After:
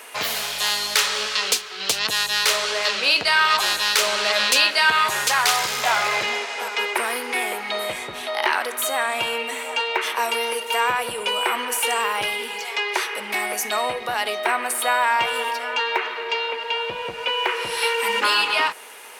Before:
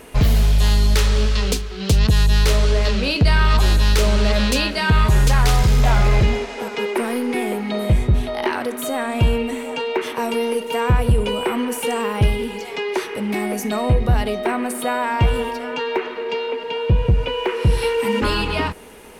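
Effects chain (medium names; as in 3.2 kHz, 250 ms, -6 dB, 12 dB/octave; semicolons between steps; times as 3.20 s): high-pass 910 Hz 12 dB/octave; trim +5.5 dB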